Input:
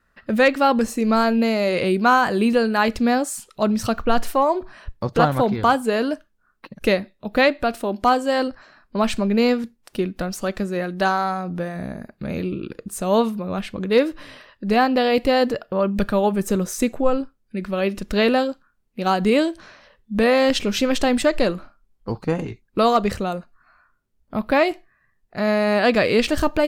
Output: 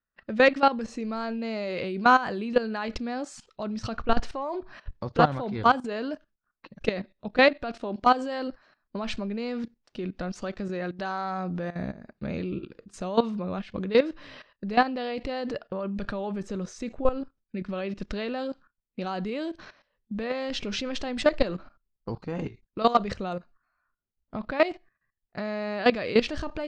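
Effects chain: gate -47 dBFS, range -11 dB; LPF 5900 Hz 24 dB/oct; level quantiser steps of 15 dB; gain -1 dB

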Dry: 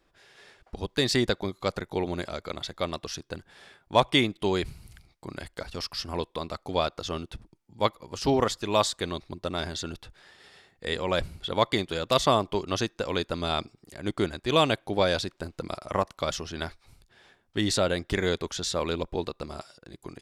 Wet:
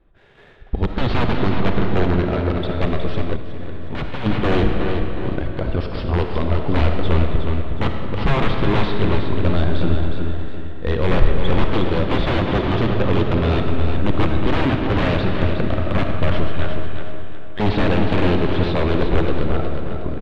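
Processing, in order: 16.5–17.6 HPF 1400 Hz 12 dB/oct; wrapped overs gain 21.5 dB; steep low-pass 3800 Hz 36 dB/oct; feedback echo 0.364 s, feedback 38%, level -7 dB; sample leveller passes 1; tilt -3 dB/oct; reverb RT60 3.0 s, pre-delay 15 ms, DRR 3.5 dB; 3.36–4.26 level quantiser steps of 13 dB; gain +3.5 dB

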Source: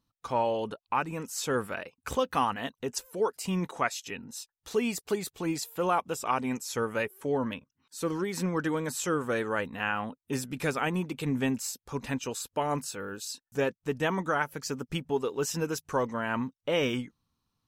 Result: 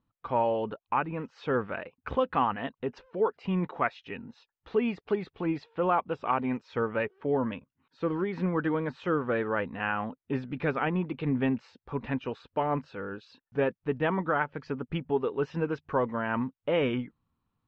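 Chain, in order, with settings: Bessel low-pass 2100 Hz, order 6; gain +1.5 dB

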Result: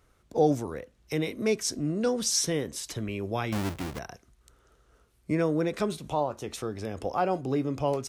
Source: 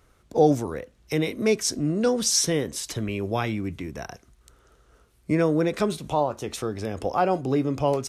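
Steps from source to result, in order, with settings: 3.52–3.99 half-waves squared off; gain -4.5 dB

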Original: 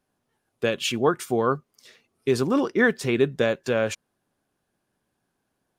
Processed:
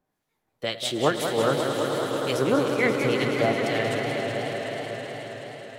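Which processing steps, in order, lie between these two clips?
formant shift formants +3 st; harmonic tremolo 2 Hz, crossover 1400 Hz; swelling echo 0.107 s, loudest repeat 5, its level -11.5 dB; reverb RT60 0.85 s, pre-delay 6 ms, DRR 14.5 dB; warbling echo 0.186 s, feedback 76%, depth 169 cents, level -8 dB

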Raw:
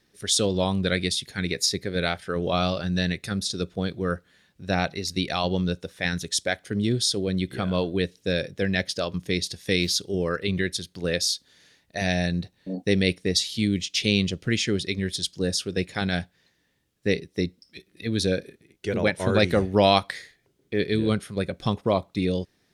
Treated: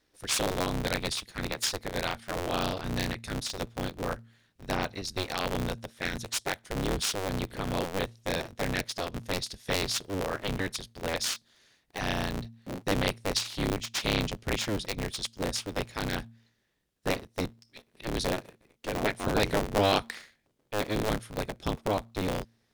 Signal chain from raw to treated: cycle switcher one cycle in 3, inverted; de-hum 114.7 Hz, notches 2; gain -6 dB

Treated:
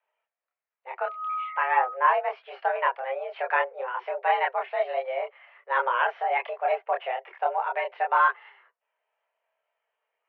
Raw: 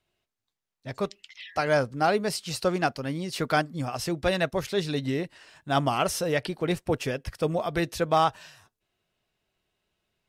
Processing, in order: 1.05–1.93 whine 1000 Hz -31 dBFS; chorus voices 4, 0.28 Hz, delay 27 ms, depth 1.5 ms; mistuned SSB +260 Hz 230–2300 Hz; gain +4.5 dB

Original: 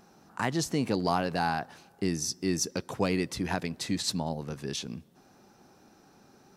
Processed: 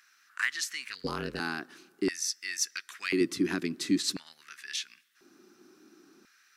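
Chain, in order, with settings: band shelf 650 Hz -15.5 dB 1.3 oct; LFO high-pass square 0.48 Hz 340–1800 Hz; 0.86–1.4 ring modulator 110 Hz; 3.21–4 low shelf 200 Hz +9.5 dB

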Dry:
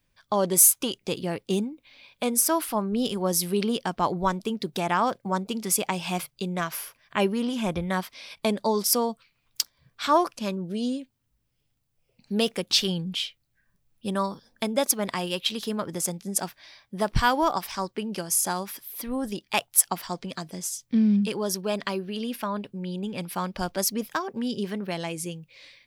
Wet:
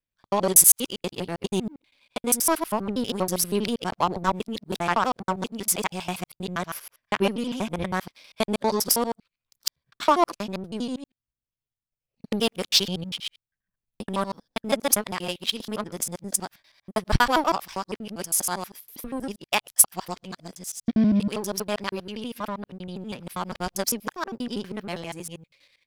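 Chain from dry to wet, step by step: local time reversal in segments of 80 ms; power-law curve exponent 1.4; gain +5 dB

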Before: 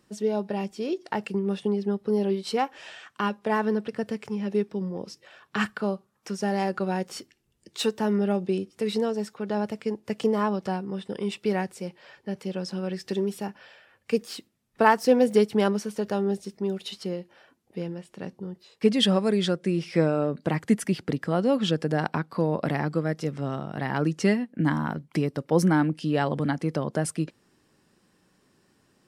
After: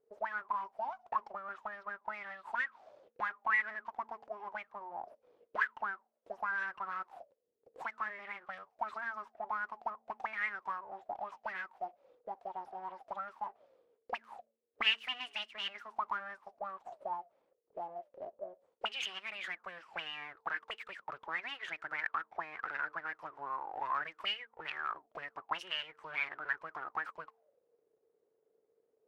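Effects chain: full-wave rectifier; de-hum 225.6 Hz, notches 2; auto-wah 440–2900 Hz, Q 14, up, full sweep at -18 dBFS; gain +9 dB

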